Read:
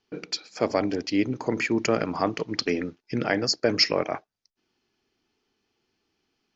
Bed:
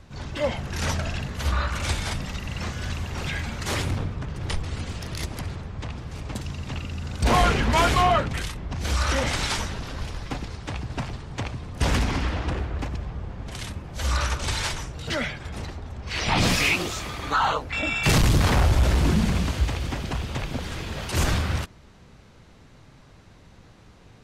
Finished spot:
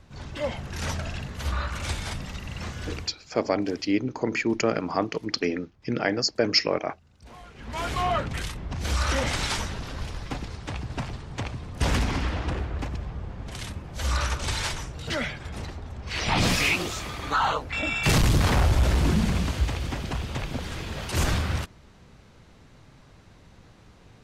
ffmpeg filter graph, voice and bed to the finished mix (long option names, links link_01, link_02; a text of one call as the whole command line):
ffmpeg -i stem1.wav -i stem2.wav -filter_complex "[0:a]adelay=2750,volume=-0.5dB[link_01];[1:a]volume=22dB,afade=type=out:start_time=2.94:duration=0.21:silence=0.0668344,afade=type=in:start_time=7.54:duration=0.92:silence=0.0501187[link_02];[link_01][link_02]amix=inputs=2:normalize=0" out.wav